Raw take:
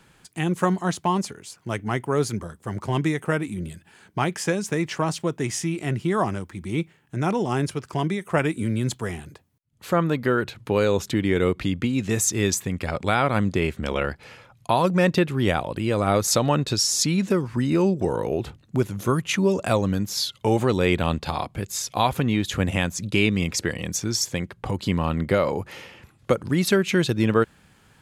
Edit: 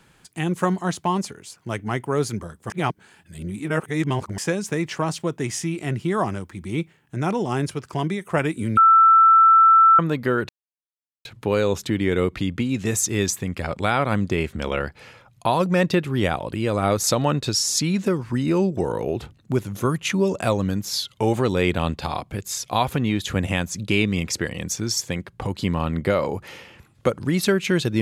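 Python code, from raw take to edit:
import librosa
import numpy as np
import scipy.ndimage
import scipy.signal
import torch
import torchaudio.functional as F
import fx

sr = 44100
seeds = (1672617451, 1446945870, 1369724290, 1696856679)

y = fx.edit(x, sr, fx.reverse_span(start_s=2.7, length_s=1.68),
    fx.bleep(start_s=8.77, length_s=1.22, hz=1330.0, db=-9.5),
    fx.insert_silence(at_s=10.49, length_s=0.76), tone=tone)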